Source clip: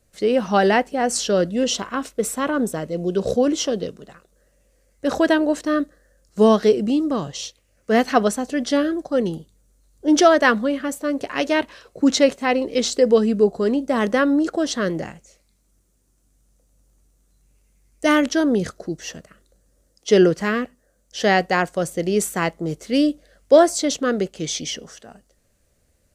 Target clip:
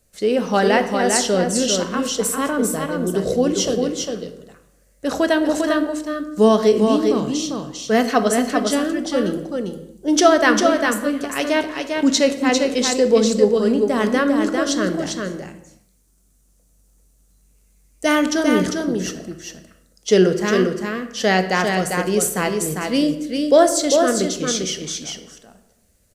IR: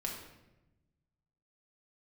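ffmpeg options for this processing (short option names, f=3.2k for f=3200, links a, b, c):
-filter_complex "[0:a]highshelf=f=5.7k:g=7.5,aecho=1:1:399:0.596,asplit=2[a][b];[1:a]atrim=start_sample=2205,afade=t=out:st=0.43:d=0.01,atrim=end_sample=19404[c];[b][c]afir=irnorm=-1:irlink=0,volume=-4dB[d];[a][d]amix=inputs=2:normalize=0,volume=-4dB"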